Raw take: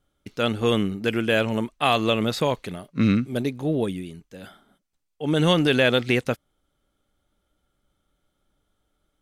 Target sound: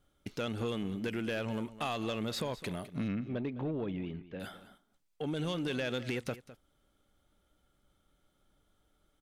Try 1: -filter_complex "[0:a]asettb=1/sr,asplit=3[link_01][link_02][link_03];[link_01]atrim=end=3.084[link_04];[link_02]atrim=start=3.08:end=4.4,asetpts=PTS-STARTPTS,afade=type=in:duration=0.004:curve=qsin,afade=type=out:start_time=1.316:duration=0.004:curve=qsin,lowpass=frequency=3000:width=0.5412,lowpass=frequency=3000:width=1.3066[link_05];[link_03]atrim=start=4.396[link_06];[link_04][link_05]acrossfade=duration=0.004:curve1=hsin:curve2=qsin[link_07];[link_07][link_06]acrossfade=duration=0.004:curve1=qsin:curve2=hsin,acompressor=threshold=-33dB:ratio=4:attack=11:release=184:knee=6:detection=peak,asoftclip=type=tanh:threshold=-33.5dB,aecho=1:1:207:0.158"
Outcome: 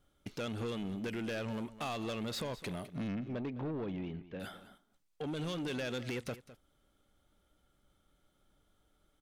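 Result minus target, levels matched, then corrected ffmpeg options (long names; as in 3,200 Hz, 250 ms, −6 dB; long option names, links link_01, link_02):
soft clipping: distortion +7 dB
-filter_complex "[0:a]asettb=1/sr,asplit=3[link_01][link_02][link_03];[link_01]atrim=end=3.084[link_04];[link_02]atrim=start=3.08:end=4.4,asetpts=PTS-STARTPTS,afade=type=in:duration=0.004:curve=qsin,afade=type=out:start_time=1.316:duration=0.004:curve=qsin,lowpass=frequency=3000:width=0.5412,lowpass=frequency=3000:width=1.3066[link_05];[link_03]atrim=start=4.396[link_06];[link_04][link_05]acrossfade=duration=0.004:curve1=hsin:curve2=qsin[link_07];[link_07][link_06]acrossfade=duration=0.004:curve1=qsin:curve2=hsin,acompressor=threshold=-33dB:ratio=4:attack=11:release=184:knee=6:detection=peak,asoftclip=type=tanh:threshold=-27dB,aecho=1:1:207:0.158"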